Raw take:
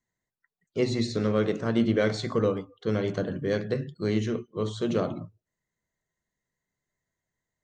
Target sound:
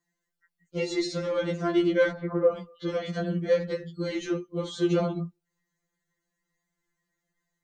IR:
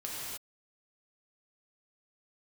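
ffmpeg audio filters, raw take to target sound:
-filter_complex "[0:a]asettb=1/sr,asplit=3[link_01][link_02][link_03];[link_01]atrim=end=2.114[link_04];[link_02]atrim=start=2.11:end=2.52,asetpts=PTS-STARTPTS,afade=type=in:duration=0.004:curve=qsin,afade=type=out:start_time=0.406:duration=0.004:curve=qsin,lowpass=frequency=1700:width=0.5412,lowpass=frequency=1700:width=1.3066[link_05];[link_03]atrim=start=2.516[link_06];[link_04][link_05]acrossfade=duration=0.004:curve1=hsin:curve2=qsin[link_07];[link_07][link_06]acrossfade=duration=0.004:curve1=qsin:curve2=hsin,asplit=2[link_08][link_09];[link_09]alimiter=limit=-22.5dB:level=0:latency=1:release=183,volume=-1.5dB[link_10];[link_08][link_10]amix=inputs=2:normalize=0,afftfilt=real='re*2.83*eq(mod(b,8),0)':imag='im*2.83*eq(mod(b,8),0)':win_size=2048:overlap=0.75"

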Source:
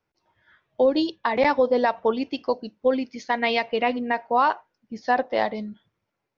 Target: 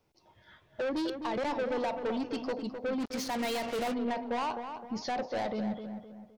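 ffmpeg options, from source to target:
ffmpeg -i in.wav -filter_complex "[0:a]asplit=2[link_01][link_02];[link_02]acompressor=threshold=-32dB:ratio=4,volume=3dB[link_03];[link_01][link_03]amix=inputs=2:normalize=0,equalizer=frequency=1600:width_type=o:width=1:gain=-9.5,asoftclip=type=tanh:threshold=-23.5dB,alimiter=level_in=5.5dB:limit=-24dB:level=0:latency=1:release=19,volume=-5.5dB,asplit=2[link_04][link_05];[link_05]adelay=258,lowpass=frequency=2300:poles=1,volume=-7.5dB,asplit=2[link_06][link_07];[link_07]adelay=258,lowpass=frequency=2300:poles=1,volume=0.4,asplit=2[link_08][link_09];[link_09]adelay=258,lowpass=frequency=2300:poles=1,volume=0.4,asplit=2[link_10][link_11];[link_11]adelay=258,lowpass=frequency=2300:poles=1,volume=0.4,asplit=2[link_12][link_13];[link_13]adelay=258,lowpass=frequency=2300:poles=1,volume=0.4[link_14];[link_04][link_06][link_08][link_10][link_12][link_14]amix=inputs=6:normalize=0,asplit=3[link_15][link_16][link_17];[link_15]afade=type=out:start_time=2.99:duration=0.02[link_18];[link_16]acrusher=bits=5:mix=0:aa=0.5,afade=type=in:start_time=2.99:duration=0.02,afade=type=out:start_time=3.93:duration=0.02[link_19];[link_17]afade=type=in:start_time=3.93:duration=0.02[link_20];[link_18][link_19][link_20]amix=inputs=3:normalize=0" out.wav

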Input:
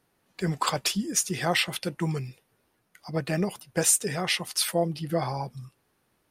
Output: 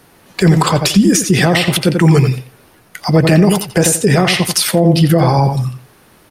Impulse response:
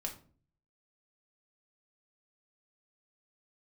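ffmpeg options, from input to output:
-filter_complex "[0:a]acrossover=split=450[link_01][link_02];[link_02]acompressor=threshold=-34dB:ratio=10[link_03];[link_01][link_03]amix=inputs=2:normalize=0,asplit=2[link_04][link_05];[link_05]adelay=87,lowpass=frequency=3900:poles=1,volume=-9dB,asplit=2[link_06][link_07];[link_07]adelay=87,lowpass=frequency=3900:poles=1,volume=0.19,asplit=2[link_08][link_09];[link_09]adelay=87,lowpass=frequency=3900:poles=1,volume=0.19[link_10];[link_04][link_06][link_08][link_10]amix=inputs=4:normalize=0,alimiter=level_in=24.5dB:limit=-1dB:release=50:level=0:latency=1,volume=-1dB"

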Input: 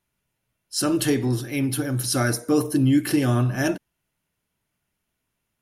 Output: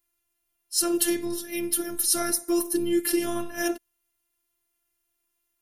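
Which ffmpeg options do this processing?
ffmpeg -i in.wav -af "afftfilt=real='hypot(re,im)*cos(PI*b)':imag='0':win_size=512:overlap=0.75,aemphasis=mode=production:type=50kf,volume=-2.5dB" out.wav

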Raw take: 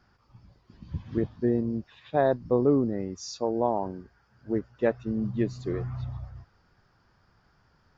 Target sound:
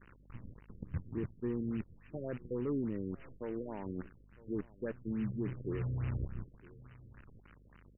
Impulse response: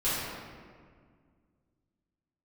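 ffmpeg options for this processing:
-filter_complex "[0:a]acrusher=bits=7:dc=4:mix=0:aa=0.000001,asoftclip=type=tanh:threshold=-18dB,areverse,acompressor=threshold=-42dB:ratio=5,areverse,aeval=exprs='val(0)+0.000316*(sin(2*PI*50*n/s)+sin(2*PI*2*50*n/s)/2+sin(2*PI*3*50*n/s)/3+sin(2*PI*4*50*n/s)/4+sin(2*PI*5*50*n/s)/5)':channel_layout=same,asplit=2[link_01][link_02];[link_02]aecho=0:1:959:0.0794[link_03];[link_01][link_03]amix=inputs=2:normalize=0,alimiter=level_in=12dB:limit=-24dB:level=0:latency=1:release=211,volume=-12dB,equalizer=frequency=720:width_type=o:width=0.82:gain=-12,afftfilt=real='re*lt(b*sr/1024,540*pow(3100/540,0.5+0.5*sin(2*PI*3.5*pts/sr)))':imag='im*lt(b*sr/1024,540*pow(3100/540,0.5+0.5*sin(2*PI*3.5*pts/sr)))':win_size=1024:overlap=0.75,volume=9dB"

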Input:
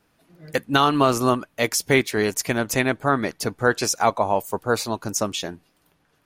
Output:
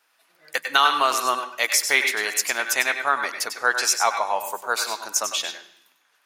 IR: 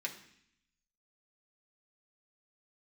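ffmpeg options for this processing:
-filter_complex "[0:a]highpass=1000,asplit=2[link_01][link_02];[1:a]atrim=start_sample=2205,adelay=97[link_03];[link_02][link_03]afir=irnorm=-1:irlink=0,volume=-6.5dB[link_04];[link_01][link_04]amix=inputs=2:normalize=0,volume=3dB"

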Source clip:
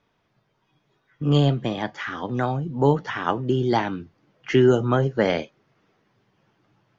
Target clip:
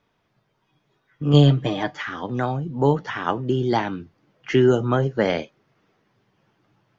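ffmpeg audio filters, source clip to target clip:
ffmpeg -i in.wav -filter_complex "[0:a]asettb=1/sr,asplit=3[link_01][link_02][link_03];[link_01]atrim=end=1.334[link_04];[link_02]atrim=start=1.33:end=2.02,asetpts=PTS-STARTPTS,afade=type=in:duration=0.004:curve=qsin,afade=type=out:start_time=0.686:duration=0.004:curve=qsin,aecho=1:1:6.6:0.87,atrim=end_sample=30429[link_05];[link_03]atrim=start=2.016[link_06];[link_04][link_05]acrossfade=duration=0.004:curve1=hsin:curve2=qsin[link_07];[link_07][link_06]acrossfade=duration=0.004:curve1=qsin:curve2=hsin" out.wav

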